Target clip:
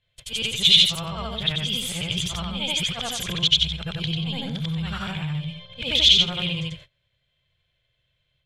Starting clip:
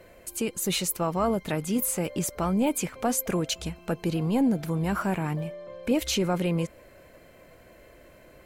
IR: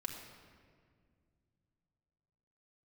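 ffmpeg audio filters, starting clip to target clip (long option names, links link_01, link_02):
-af "afftfilt=real='re':imag='-im':win_size=8192:overlap=0.75,agate=range=-26dB:threshold=-49dB:ratio=16:detection=peak,lowshelf=frequency=180:width_type=q:width=3:gain=13,alimiter=limit=-21.5dB:level=0:latency=1:release=201,lowpass=frequency=3400:width_type=q:width=14,crystalizer=i=8:c=0,volume=-1dB"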